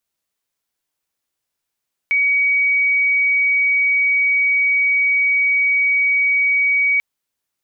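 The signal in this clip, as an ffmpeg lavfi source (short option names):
-f lavfi -i "sine=f=2260:d=4.89:r=44100,volume=5.06dB"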